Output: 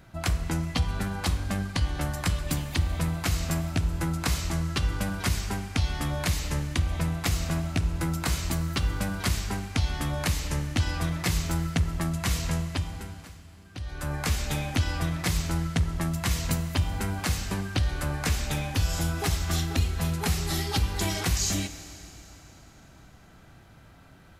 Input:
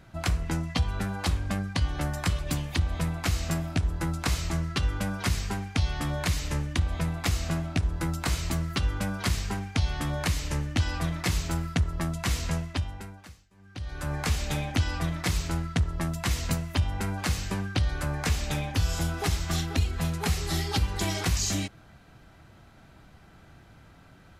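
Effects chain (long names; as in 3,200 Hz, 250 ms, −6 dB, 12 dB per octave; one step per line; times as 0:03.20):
high-shelf EQ 11,000 Hz +7 dB
four-comb reverb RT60 3.4 s, combs from 33 ms, DRR 11.5 dB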